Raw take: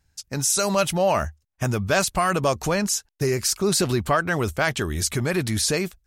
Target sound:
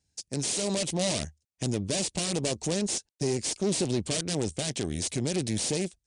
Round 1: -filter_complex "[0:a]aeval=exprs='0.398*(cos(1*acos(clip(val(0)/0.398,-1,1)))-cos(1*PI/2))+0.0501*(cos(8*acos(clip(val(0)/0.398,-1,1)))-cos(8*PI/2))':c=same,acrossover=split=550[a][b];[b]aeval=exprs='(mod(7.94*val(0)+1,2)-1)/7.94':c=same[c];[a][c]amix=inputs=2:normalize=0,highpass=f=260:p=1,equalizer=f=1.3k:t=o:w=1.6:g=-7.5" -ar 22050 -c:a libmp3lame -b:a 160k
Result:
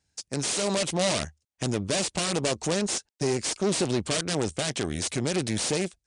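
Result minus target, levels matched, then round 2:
1000 Hz band +5.0 dB
-filter_complex "[0:a]aeval=exprs='0.398*(cos(1*acos(clip(val(0)/0.398,-1,1)))-cos(1*PI/2))+0.0501*(cos(8*acos(clip(val(0)/0.398,-1,1)))-cos(8*PI/2))':c=same,acrossover=split=550[a][b];[b]aeval=exprs='(mod(7.94*val(0)+1,2)-1)/7.94':c=same[c];[a][c]amix=inputs=2:normalize=0,highpass=f=260:p=1,equalizer=f=1.3k:t=o:w=1.6:g=-18.5" -ar 22050 -c:a libmp3lame -b:a 160k

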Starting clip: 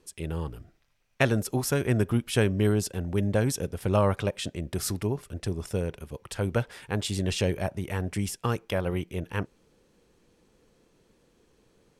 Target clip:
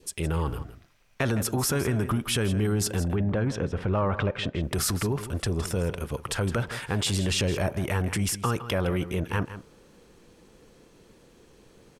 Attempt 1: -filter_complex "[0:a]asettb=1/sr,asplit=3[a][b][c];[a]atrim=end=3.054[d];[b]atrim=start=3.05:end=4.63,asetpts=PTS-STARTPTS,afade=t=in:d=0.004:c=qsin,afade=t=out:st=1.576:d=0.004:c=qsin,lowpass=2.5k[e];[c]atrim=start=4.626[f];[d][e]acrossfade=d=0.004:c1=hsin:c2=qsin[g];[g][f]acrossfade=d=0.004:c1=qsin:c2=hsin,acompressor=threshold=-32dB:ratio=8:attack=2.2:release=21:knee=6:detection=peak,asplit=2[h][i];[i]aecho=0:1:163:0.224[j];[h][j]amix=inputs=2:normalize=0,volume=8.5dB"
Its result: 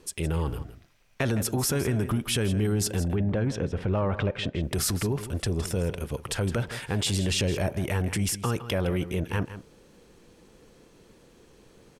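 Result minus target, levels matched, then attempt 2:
1000 Hz band -3.0 dB
-filter_complex "[0:a]asettb=1/sr,asplit=3[a][b][c];[a]atrim=end=3.054[d];[b]atrim=start=3.05:end=4.63,asetpts=PTS-STARTPTS,afade=t=in:d=0.004:c=qsin,afade=t=out:st=1.576:d=0.004:c=qsin,lowpass=2.5k[e];[c]atrim=start=4.626[f];[d][e]acrossfade=d=0.004:c1=hsin:c2=qsin[g];[g][f]acrossfade=d=0.004:c1=qsin:c2=hsin,acompressor=threshold=-32dB:ratio=8:attack=2.2:release=21:knee=6:detection=peak,adynamicequalizer=threshold=0.00141:dfrequency=1200:dqfactor=1.6:tfrequency=1200:tqfactor=1.6:attack=5:release=100:ratio=0.438:range=2.5:mode=boostabove:tftype=bell,asplit=2[h][i];[i]aecho=0:1:163:0.224[j];[h][j]amix=inputs=2:normalize=0,volume=8.5dB"

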